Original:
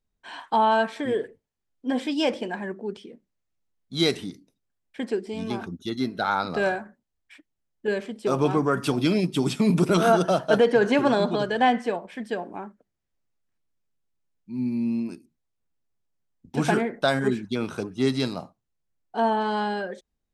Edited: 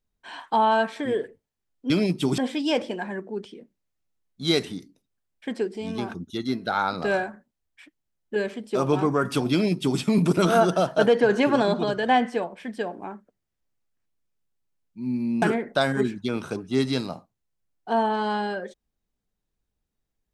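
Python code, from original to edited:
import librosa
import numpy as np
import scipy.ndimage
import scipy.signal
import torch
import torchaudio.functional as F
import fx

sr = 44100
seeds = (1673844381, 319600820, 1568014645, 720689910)

y = fx.edit(x, sr, fx.duplicate(start_s=9.04, length_s=0.48, to_s=1.9),
    fx.cut(start_s=14.94, length_s=1.75), tone=tone)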